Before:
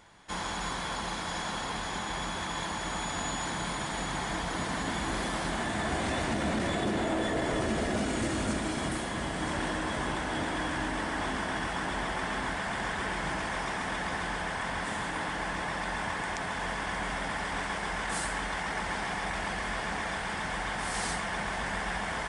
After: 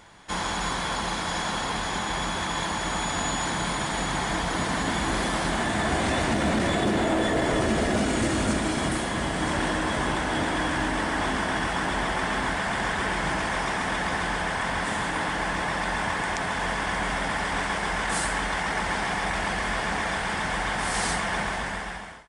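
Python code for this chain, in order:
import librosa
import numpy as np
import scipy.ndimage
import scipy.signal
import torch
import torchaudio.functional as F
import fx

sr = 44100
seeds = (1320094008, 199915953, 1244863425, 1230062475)

y = fx.fade_out_tail(x, sr, length_s=0.91)
y = fx.quant_float(y, sr, bits=6)
y = y * librosa.db_to_amplitude(6.0)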